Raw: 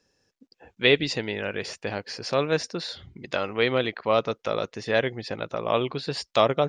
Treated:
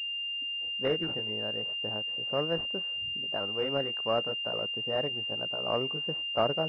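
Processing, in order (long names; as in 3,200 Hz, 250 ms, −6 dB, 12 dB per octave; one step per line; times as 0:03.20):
pitch shifter swept by a sawtooth +2 semitones, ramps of 567 ms
low-pass that shuts in the quiet parts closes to 630 Hz, open at −18.5 dBFS
switching amplifier with a slow clock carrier 2,800 Hz
level −6 dB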